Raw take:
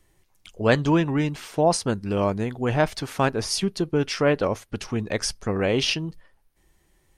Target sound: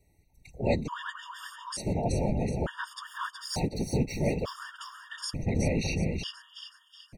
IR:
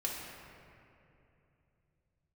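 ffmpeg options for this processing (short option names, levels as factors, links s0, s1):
-filter_complex "[0:a]asubboost=boost=5.5:cutoff=130,asplit=2[s0][s1];[s1]acompressor=threshold=0.0355:ratio=6,volume=0.841[s2];[s0][s2]amix=inputs=2:normalize=0,asettb=1/sr,asplit=3[s3][s4][s5];[s3]atrim=end=3.024[s6];[s4]atrim=start=3.02:end=4.44,asetpts=PTS-STARTPTS,afade=t=in:d=0.004:c=qsin,afade=t=out:st=1.416:d=0.004:c=qsin,aeval=exprs='sgn(val(0))*max(abs(val(0))-0.015,0)':c=same[s7];[s5]atrim=start=4.436[s8];[s6][s7]acrossfade=d=0.004:c1=hsin:c2=qsin[s9];[s9][s8]acrossfade=d=0.004:c1=qsin:c2=hsin,aecho=1:1:371|742|1113|1484|1855:0.562|0.242|0.104|0.0447|0.0192,afftfilt=real='hypot(re,im)*cos(2*PI*random(0))':imag='hypot(re,im)*sin(2*PI*random(1))':win_size=512:overlap=0.75,afftfilt=real='re*gt(sin(2*PI*0.56*pts/sr)*(1-2*mod(floor(b*sr/1024/930),2)),0)':imag='im*gt(sin(2*PI*0.56*pts/sr)*(1-2*mod(floor(b*sr/1024/930),2)),0)':win_size=1024:overlap=0.75,volume=0.75"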